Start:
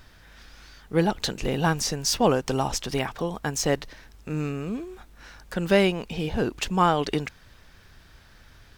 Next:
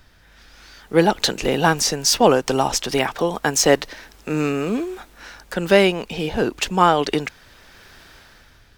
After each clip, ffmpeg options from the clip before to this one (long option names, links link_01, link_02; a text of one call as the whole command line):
ffmpeg -i in.wav -filter_complex "[0:a]bandreject=frequency=1100:width=26,acrossover=split=240[link_01][link_02];[link_02]dynaudnorm=framelen=160:gausssize=9:maxgain=15dB[link_03];[link_01][link_03]amix=inputs=2:normalize=0,volume=-1dB" out.wav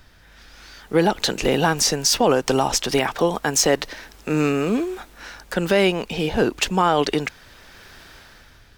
ffmpeg -i in.wav -af "alimiter=limit=-8.5dB:level=0:latency=1:release=89,volume=1.5dB" out.wav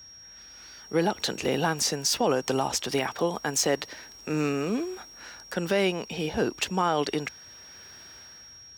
ffmpeg -i in.wav -af "aeval=exprs='val(0)+0.0112*sin(2*PI*5600*n/s)':channel_layout=same,highpass=frequency=62:width=0.5412,highpass=frequency=62:width=1.3066,volume=-7dB" out.wav